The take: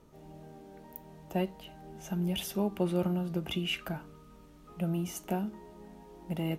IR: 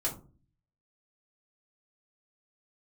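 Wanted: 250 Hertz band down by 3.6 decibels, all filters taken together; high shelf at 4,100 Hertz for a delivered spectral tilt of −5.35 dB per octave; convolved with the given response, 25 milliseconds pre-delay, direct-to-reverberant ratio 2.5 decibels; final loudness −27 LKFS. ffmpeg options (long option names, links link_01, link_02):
-filter_complex "[0:a]equalizer=frequency=250:width_type=o:gain=-6.5,highshelf=frequency=4100:gain=-8.5,asplit=2[link_01][link_02];[1:a]atrim=start_sample=2205,adelay=25[link_03];[link_02][link_03]afir=irnorm=-1:irlink=0,volume=-7dB[link_04];[link_01][link_04]amix=inputs=2:normalize=0,volume=8dB"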